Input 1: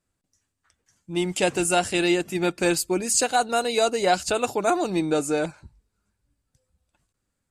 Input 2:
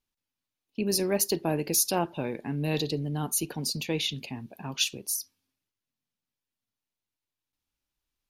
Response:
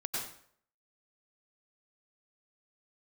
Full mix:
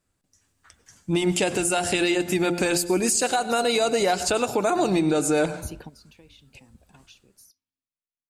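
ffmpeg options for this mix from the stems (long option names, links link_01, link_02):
-filter_complex "[0:a]acompressor=threshold=-22dB:ratio=6,bandreject=frequency=174.9:width_type=h:width=4,bandreject=frequency=349.8:width_type=h:width=4,bandreject=frequency=524.7:width_type=h:width=4,bandreject=frequency=699.6:width_type=h:width=4,bandreject=frequency=874.5:width_type=h:width=4,dynaudnorm=framelen=190:gausssize=5:maxgain=9dB,volume=2.5dB,asplit=3[link_01][link_02][link_03];[link_02]volume=-18dB[link_04];[1:a]highshelf=frequency=8000:gain=-8.5,acompressor=threshold=-34dB:ratio=6,adelay=2300,volume=-0.5dB[link_05];[link_03]apad=whole_len=467294[link_06];[link_05][link_06]sidechaingate=range=-15dB:threshold=-52dB:ratio=16:detection=peak[link_07];[2:a]atrim=start_sample=2205[link_08];[link_04][link_08]afir=irnorm=-1:irlink=0[link_09];[link_01][link_07][link_09]amix=inputs=3:normalize=0,alimiter=limit=-13dB:level=0:latency=1:release=292"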